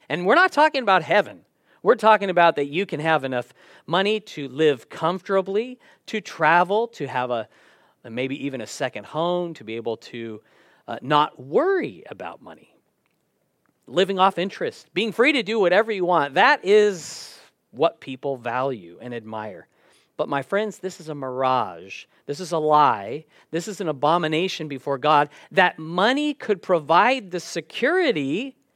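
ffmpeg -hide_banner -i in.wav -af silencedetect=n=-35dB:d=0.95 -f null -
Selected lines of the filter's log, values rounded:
silence_start: 12.53
silence_end: 13.89 | silence_duration: 1.35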